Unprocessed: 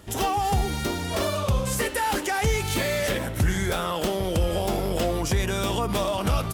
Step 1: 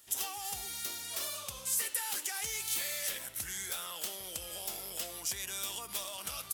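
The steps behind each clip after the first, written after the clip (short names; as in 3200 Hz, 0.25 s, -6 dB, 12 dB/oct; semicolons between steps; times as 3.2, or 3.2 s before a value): pre-emphasis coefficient 0.97; gain -1.5 dB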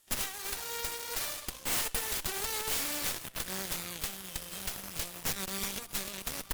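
added harmonics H 3 -15 dB, 8 -9 dB, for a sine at -18 dBFS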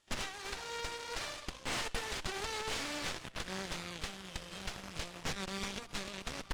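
air absorption 100 m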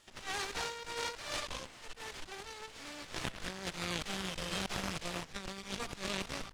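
negative-ratio compressor -45 dBFS, ratio -0.5; gain +4.5 dB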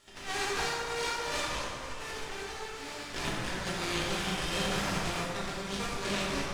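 plate-style reverb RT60 2.3 s, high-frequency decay 0.5×, DRR -6 dB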